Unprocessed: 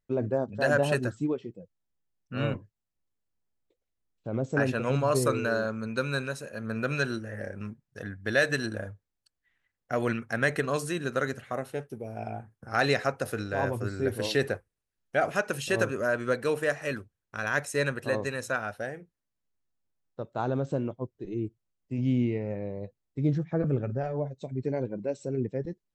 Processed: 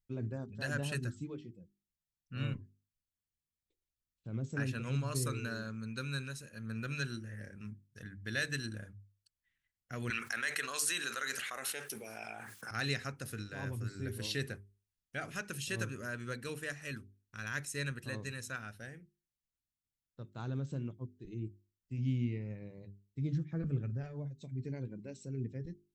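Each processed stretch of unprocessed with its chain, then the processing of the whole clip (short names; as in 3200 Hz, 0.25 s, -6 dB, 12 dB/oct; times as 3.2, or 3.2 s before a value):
10.1–12.71 HPF 730 Hz + fast leveller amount 70%
whole clip: passive tone stack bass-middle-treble 6-0-2; notches 50/100/150/200/250/300/350/400 Hz; gain +10.5 dB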